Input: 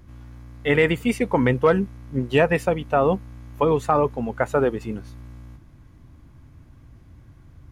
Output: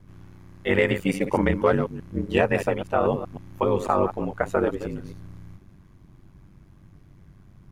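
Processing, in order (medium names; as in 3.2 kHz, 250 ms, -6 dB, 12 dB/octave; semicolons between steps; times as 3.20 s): chunks repeated in reverse 125 ms, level -10 dB; ring modulator 48 Hz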